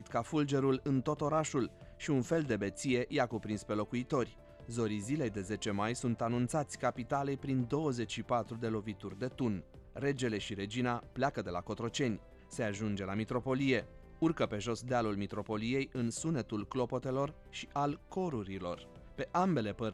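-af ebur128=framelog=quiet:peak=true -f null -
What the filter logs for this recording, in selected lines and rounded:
Integrated loudness:
  I:         -35.8 LUFS
  Threshold: -45.9 LUFS
Loudness range:
  LRA:         2.7 LU
  Threshold: -56.1 LUFS
  LRA low:   -37.3 LUFS
  LRA high:  -34.7 LUFS
True peak:
  Peak:      -18.0 dBFS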